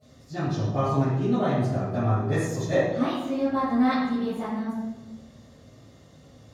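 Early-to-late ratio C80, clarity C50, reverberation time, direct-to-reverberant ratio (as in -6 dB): 2.0 dB, -2.5 dB, 1.1 s, -19.5 dB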